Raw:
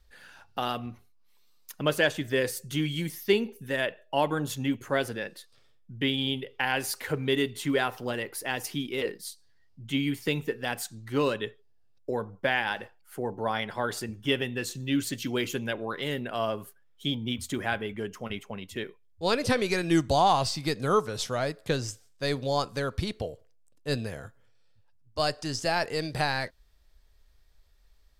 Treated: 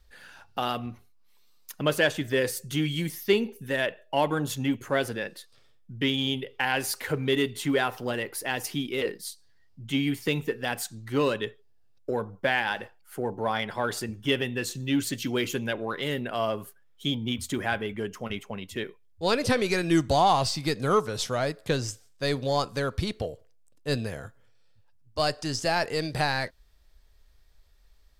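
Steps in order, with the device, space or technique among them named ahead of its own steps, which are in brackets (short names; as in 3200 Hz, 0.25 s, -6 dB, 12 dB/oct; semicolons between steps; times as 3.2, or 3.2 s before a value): parallel distortion (in parallel at -11.5 dB: hard clip -26 dBFS, distortion -8 dB)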